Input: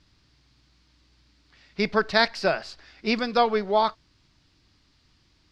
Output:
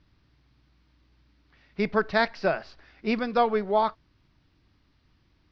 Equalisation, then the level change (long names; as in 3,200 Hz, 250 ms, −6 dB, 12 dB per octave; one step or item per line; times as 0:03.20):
low-pass with resonance 6,000 Hz, resonance Q 5.9
high-frequency loss of the air 460 metres
0.0 dB